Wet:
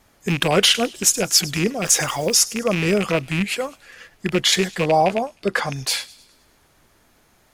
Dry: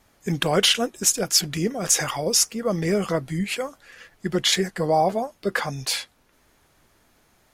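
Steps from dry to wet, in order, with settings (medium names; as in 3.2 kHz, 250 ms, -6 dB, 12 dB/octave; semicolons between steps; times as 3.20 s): rattle on loud lows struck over -29 dBFS, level -17 dBFS; 1.82–2.39 s: added noise white -50 dBFS; 4.84–5.73 s: low-pass 11 kHz 12 dB/octave; feedback echo behind a high-pass 103 ms, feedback 51%, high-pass 3 kHz, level -18.5 dB; trim +3 dB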